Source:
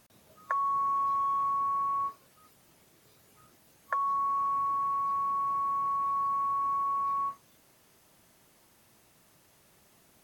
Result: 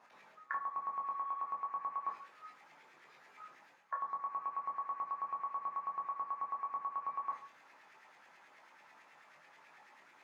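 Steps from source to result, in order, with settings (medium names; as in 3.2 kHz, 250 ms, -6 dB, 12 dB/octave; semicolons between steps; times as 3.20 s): reverse; compression 10:1, threshold -40 dBFS, peak gain reduction 15 dB; reverse; LFO band-pass saw up 9.2 Hz 770–2200 Hz; reverberation RT60 0.40 s, pre-delay 14 ms, DRR 0 dB; trim +5.5 dB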